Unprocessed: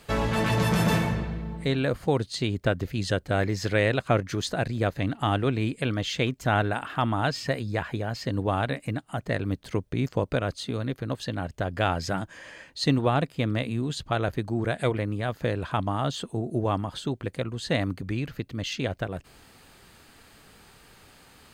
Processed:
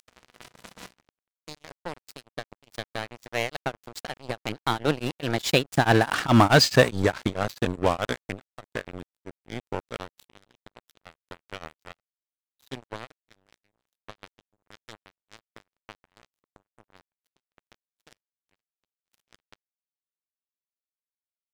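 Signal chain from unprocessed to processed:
source passing by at 0:06.45, 37 m/s, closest 18 metres
Butterworth low-pass 11,000 Hz
low-shelf EQ 130 Hz −7.5 dB
upward compression, threshold −44 dBFS
parametric band 7,100 Hz +4.5 dB 1.1 octaves
dead-zone distortion −44.5 dBFS
leveller curve on the samples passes 3
tremolo along a rectified sine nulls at 4.7 Hz
level +6 dB

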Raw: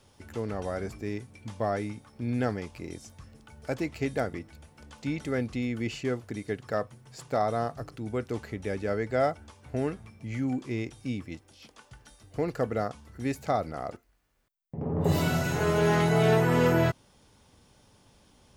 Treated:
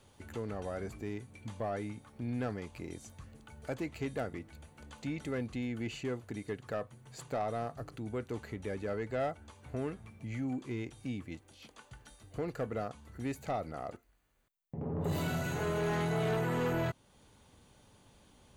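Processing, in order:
notch filter 5,300 Hz, Q 5.7
in parallel at −0.5 dB: downward compressor, threshold −38 dBFS, peak gain reduction 18.5 dB
on the sum: soft clipping −19 dBFS, distortion −15 dB
level −7.5 dB

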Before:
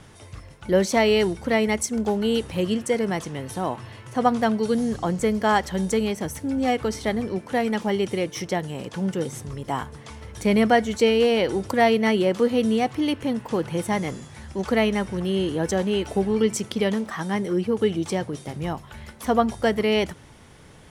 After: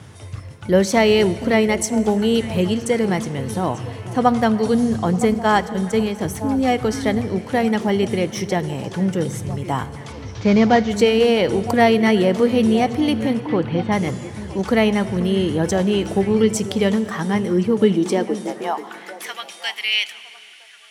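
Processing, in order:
0:10.12–0:10.90: variable-slope delta modulation 32 kbit/s
high-pass filter sweep 97 Hz → 2,600 Hz, 0:17.54–0:19.40
0:05.34–0:06.19: downward expander −19 dBFS
0:13.40–0:13.92: low-pass filter 3,900 Hz 24 dB per octave
echo through a band-pass that steps 481 ms, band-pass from 280 Hz, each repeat 1.4 octaves, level −10 dB
dense smooth reverb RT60 3.1 s, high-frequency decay 0.95×, DRR 15.5 dB
level +3.5 dB

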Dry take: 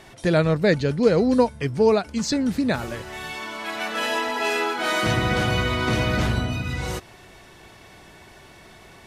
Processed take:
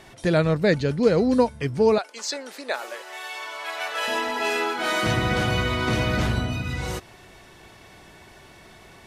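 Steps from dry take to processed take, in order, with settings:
0:01.98–0:04.08: high-pass filter 470 Hz 24 dB per octave
level −1 dB

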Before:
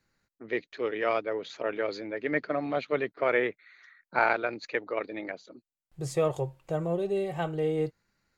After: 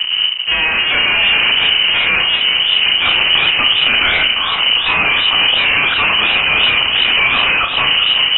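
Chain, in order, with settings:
played backwards from end to start
wind on the microphone 90 Hz −35 dBFS
low-shelf EQ 86 Hz −8 dB
leveller curve on the samples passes 1
automatic gain control gain up to 14.5 dB
tilt shelving filter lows +3.5 dB
phaser with its sweep stopped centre 1,800 Hz, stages 8
fuzz pedal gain 53 dB, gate −49 dBFS
on a send: flutter between parallel walls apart 6.1 metres, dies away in 0.33 s
on the sum: voice inversion scrambler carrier 3,000 Hz
feedback echo with a swinging delay time 384 ms, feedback 73%, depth 104 cents, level −10 dB
level −1 dB

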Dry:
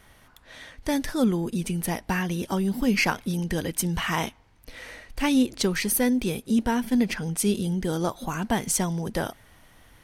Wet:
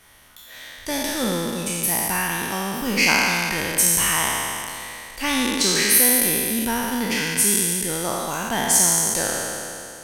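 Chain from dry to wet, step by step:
peak hold with a decay on every bin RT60 2.59 s
background noise brown −56 dBFS
in parallel at −8 dB: soft clipping −9.5 dBFS, distortion −21 dB
on the sum: spectral tilt +2 dB per octave
level −4 dB

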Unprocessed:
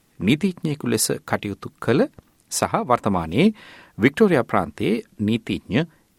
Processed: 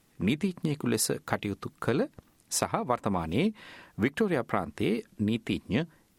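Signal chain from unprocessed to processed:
downward compressor 5 to 1, threshold −19 dBFS, peak gain reduction 9 dB
level −4 dB

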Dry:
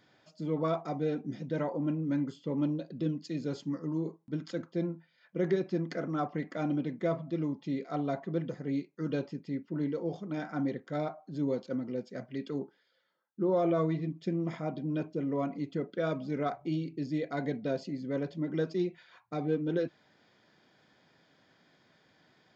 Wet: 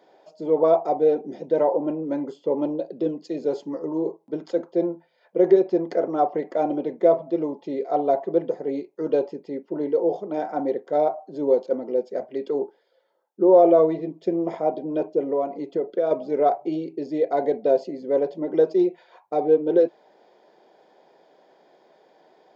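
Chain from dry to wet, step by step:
high-pass filter 180 Hz 24 dB per octave
flat-topped bell 580 Hz +15 dB
0:15.25–0:16.11: downward compressor 2 to 1, threshold −23 dBFS, peak gain reduction 6 dB

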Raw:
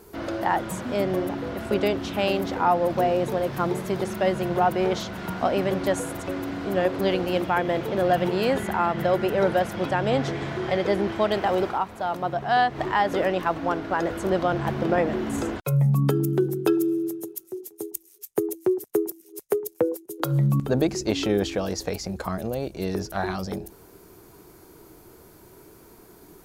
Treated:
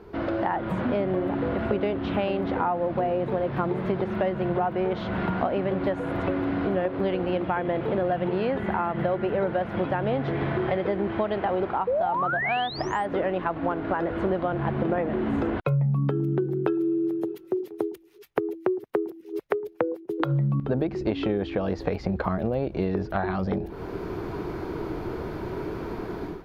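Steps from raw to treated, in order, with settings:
automatic gain control gain up to 15 dB
sound drawn into the spectrogram rise, 0:11.87–0:13.06, 470–9,400 Hz −13 dBFS
dynamic equaliser 6,000 Hz, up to −7 dB, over −45 dBFS, Q 1.4
downward compressor 6 to 1, threshold −27 dBFS, peak gain reduction 19 dB
high-frequency loss of the air 320 metres
level +4 dB

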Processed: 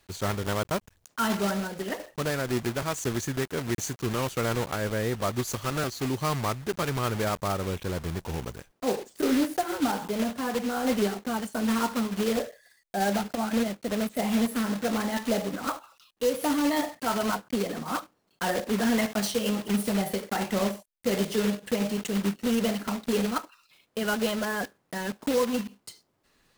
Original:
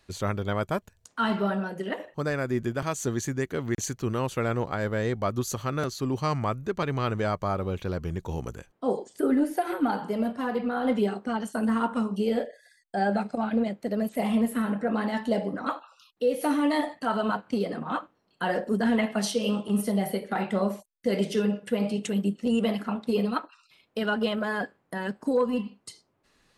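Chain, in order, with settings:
one scale factor per block 3 bits
level −1 dB

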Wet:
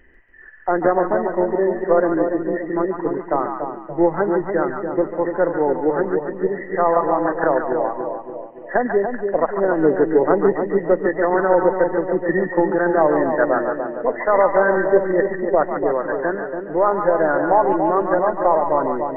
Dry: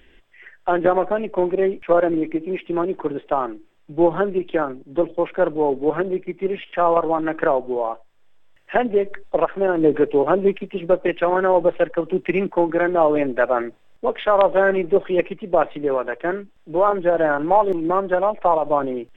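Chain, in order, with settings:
hearing-aid frequency compression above 1,700 Hz 4 to 1
echo with a time of its own for lows and highs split 750 Hz, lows 287 ms, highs 143 ms, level −5 dB

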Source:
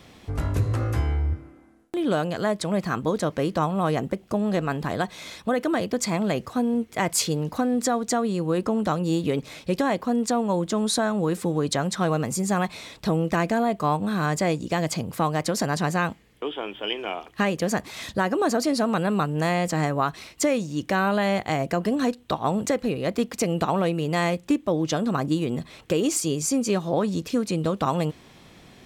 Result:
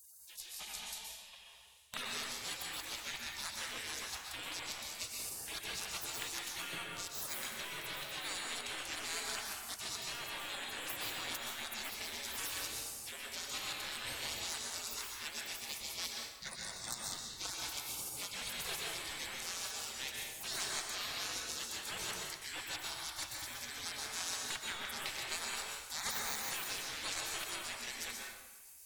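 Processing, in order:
flat-topped bell 2,100 Hz +9.5 dB
reversed playback
downward compressor 6 to 1, threshold −28 dBFS, peak gain reduction 14 dB
reversed playback
high-pass filter 120 Hz 24 dB per octave
low-shelf EQ 310 Hz −6.5 dB
soft clipping −24 dBFS, distortion −15 dB
gate on every frequency bin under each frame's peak −30 dB weak
on a send: feedback echo with a band-pass in the loop 109 ms, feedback 72%, band-pass 2,600 Hz, level −16.5 dB
on the sum: dense smooth reverb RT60 1.1 s, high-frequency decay 0.6×, pre-delay 110 ms, DRR −1 dB
level +12.5 dB

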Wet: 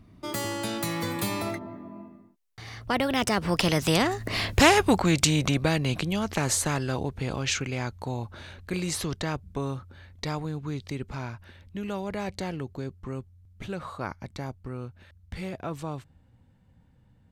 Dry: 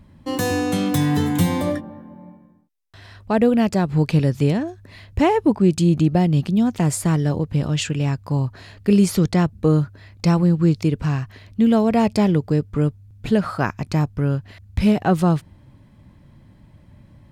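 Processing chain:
source passing by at 0:04.55, 42 m/s, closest 13 metres
every bin compressed towards the loudest bin 2 to 1
level +3 dB

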